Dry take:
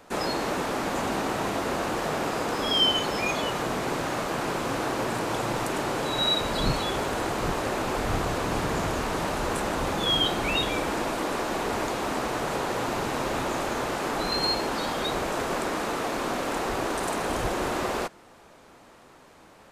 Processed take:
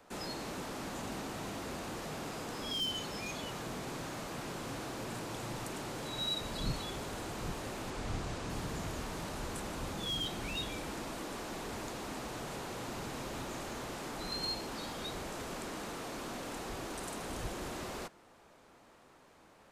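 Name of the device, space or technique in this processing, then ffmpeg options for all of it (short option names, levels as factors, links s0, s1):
one-band saturation: -filter_complex "[0:a]acrossover=split=260|3500[s0][s1][s2];[s1]asoftclip=type=tanh:threshold=0.0211[s3];[s0][s3][s2]amix=inputs=3:normalize=0,asettb=1/sr,asplit=3[s4][s5][s6];[s4]atrim=end=7.904[s7];[s5]atrim=start=7.9:end=8.5,asetpts=PTS-STARTPTS,afade=t=in:d=0.004:c=qsin,afade=t=out:st=0.596:d=0.004:c=qsin,lowpass=9200[s8];[s6]atrim=start=8.496[s9];[s7][s8]acrossfade=d=0.004:c1=hsin:c2=qsin[s10];[s10][s9]acrossfade=d=0.004:c1=qsin:c2=hsin,volume=0.376"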